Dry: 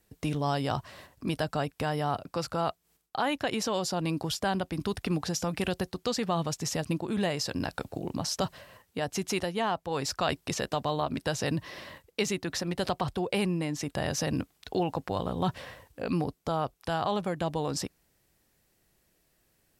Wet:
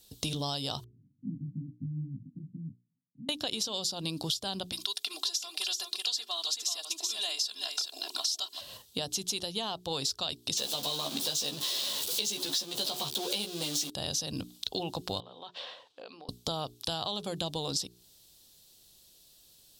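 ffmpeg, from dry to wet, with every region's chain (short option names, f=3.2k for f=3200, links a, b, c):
-filter_complex "[0:a]asettb=1/sr,asplit=3[a][b][c];[a]atrim=end=0.844[d];[b]atrim=start=0.84:end=3.29,asetpts=PTS-STARTPTS,afade=t=in:d=0.004:c=qsin,afade=t=out:st=2.446:d=0.004:c=qsin,flanger=delay=15.5:depth=6:speed=2.3,asuperpass=centerf=170:order=12:qfactor=0.97[e];[c]atrim=start=3.286[f];[d][e]acrossfade=d=0.004:c1=hsin:c2=qsin[g];[g][f]acrossfade=d=0.004:c1=qsin:c2=hsin,asettb=1/sr,asplit=3[h][i][j];[h]atrim=end=4.724[k];[i]atrim=start=4.72:end=8.61,asetpts=PTS-STARTPTS,afade=t=in:d=0.004:c=qsin,afade=t=out:st=3.886:d=0.004:c=qsin,highpass=1k,aecho=1:1:2.9:0.88,atrim=end_sample=171549,aecho=1:1:381:0.473,atrim=end_sample=171549[l];[j]atrim=start=8.606[m];[k][l]acrossfade=d=0.004:c1=hsin:c2=qsin[n];[n][m]acrossfade=d=0.004:c1=qsin:c2=hsin,asettb=1/sr,asplit=3[o][p][q];[o]atrim=end=10.574[r];[p]atrim=start=10.57:end=13.9,asetpts=PTS-STARTPTS,afade=t=in:d=0.004:c=qsin,afade=t=out:st=3.326:d=0.004:c=qsin,aeval=exprs='val(0)+0.5*0.0376*sgn(val(0))':c=same,highpass=240,asplit=2[s][t];[t]adelay=14,volume=-3.5dB[u];[s][u]amix=inputs=2:normalize=0,atrim=end_sample=146853[v];[q]atrim=start=13.896[w];[r][v]acrossfade=d=0.004:c1=hsin:c2=qsin[x];[x][w]acrossfade=d=0.004:c1=qsin:c2=hsin,asettb=1/sr,asplit=3[y][z][aa];[y]atrim=end=15.204[ab];[z]atrim=start=15.2:end=16.29,asetpts=PTS-STARTPTS,afade=t=in:d=0.004:c=qsin,afade=t=out:st=1.086:d=0.004:c=qsin,acompressor=threshold=-38dB:ratio=10:attack=3.2:release=140:knee=1:detection=peak,highpass=560,lowpass=2.5k[ac];[aa]atrim=start=16.286[ad];[ab][ac]acrossfade=d=0.004:c1=hsin:c2=qsin[ae];[ae][ad]acrossfade=d=0.004:c1=qsin:c2=hsin,highshelf=f=2.7k:t=q:w=3:g=10.5,bandreject=f=60:t=h:w=6,bandreject=f=120:t=h:w=6,bandreject=f=180:t=h:w=6,bandreject=f=240:t=h:w=6,bandreject=f=300:t=h:w=6,bandreject=f=360:t=h:w=6,bandreject=f=420:t=h:w=6,acompressor=threshold=-32dB:ratio=6,volume=1.5dB"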